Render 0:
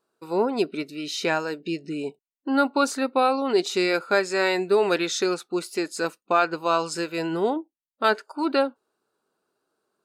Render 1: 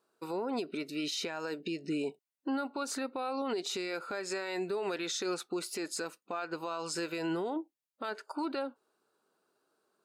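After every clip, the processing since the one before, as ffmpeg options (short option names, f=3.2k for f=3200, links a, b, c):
-af "highpass=f=160:p=1,acompressor=threshold=-25dB:ratio=6,alimiter=level_in=2.5dB:limit=-24dB:level=0:latency=1:release=91,volume=-2.5dB"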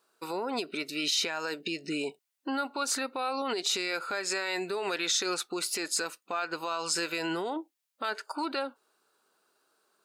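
-af "tiltshelf=f=750:g=-5.5,volume=3.5dB"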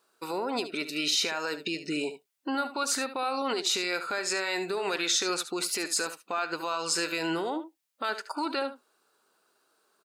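-af "aecho=1:1:73:0.251,volume=1.5dB"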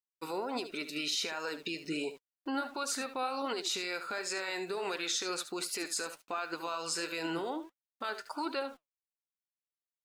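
-filter_complex "[0:a]asplit=2[a][b];[b]alimiter=limit=-22.5dB:level=0:latency=1:release=323,volume=2.5dB[c];[a][c]amix=inputs=2:normalize=0,aeval=exprs='val(0)*gte(abs(val(0)),0.00501)':c=same,flanger=delay=1.8:depth=6.1:regen=76:speed=1.4:shape=sinusoidal,volume=-7dB"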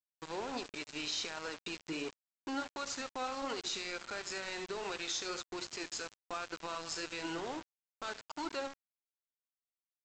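-filter_complex "[0:a]asplit=2[a][b];[b]adelay=62,lowpass=f=4.8k:p=1,volume=-14dB,asplit=2[c][d];[d]adelay=62,lowpass=f=4.8k:p=1,volume=0.46,asplit=2[e][f];[f]adelay=62,lowpass=f=4.8k:p=1,volume=0.46,asplit=2[g][h];[h]adelay=62,lowpass=f=4.8k:p=1,volume=0.46[i];[a][c][e][g][i]amix=inputs=5:normalize=0,aresample=16000,aeval=exprs='val(0)*gte(abs(val(0)),0.0133)':c=same,aresample=44100,volume=-3.5dB"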